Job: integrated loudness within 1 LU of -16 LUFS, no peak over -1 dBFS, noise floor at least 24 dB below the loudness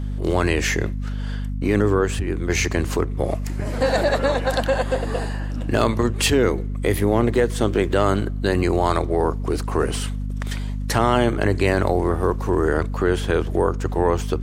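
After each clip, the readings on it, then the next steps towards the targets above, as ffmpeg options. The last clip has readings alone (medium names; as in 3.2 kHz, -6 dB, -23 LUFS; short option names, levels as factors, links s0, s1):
hum 50 Hz; highest harmonic 250 Hz; hum level -23 dBFS; loudness -21.5 LUFS; peak level -3.5 dBFS; loudness target -16.0 LUFS
-> -af "bandreject=f=50:t=h:w=4,bandreject=f=100:t=h:w=4,bandreject=f=150:t=h:w=4,bandreject=f=200:t=h:w=4,bandreject=f=250:t=h:w=4"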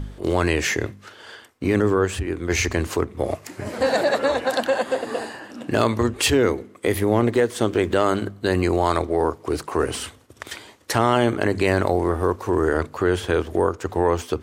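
hum not found; loudness -22.0 LUFS; peak level -4.5 dBFS; loudness target -16.0 LUFS
-> -af "volume=2,alimiter=limit=0.891:level=0:latency=1"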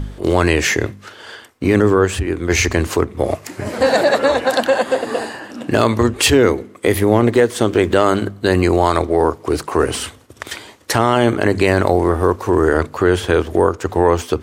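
loudness -16.5 LUFS; peak level -1.0 dBFS; noise floor -42 dBFS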